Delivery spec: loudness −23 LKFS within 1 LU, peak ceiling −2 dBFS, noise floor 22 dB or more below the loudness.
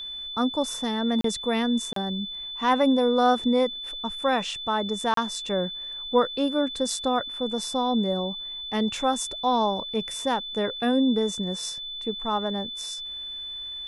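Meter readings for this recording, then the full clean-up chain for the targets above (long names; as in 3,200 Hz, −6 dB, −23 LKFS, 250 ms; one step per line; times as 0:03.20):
number of dropouts 3; longest dropout 33 ms; interfering tone 3,500 Hz; level of the tone −33 dBFS; integrated loudness −26.0 LKFS; sample peak −9.0 dBFS; target loudness −23.0 LKFS
→ repair the gap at 0:01.21/0:01.93/0:05.14, 33 ms
notch filter 3,500 Hz, Q 30
level +3 dB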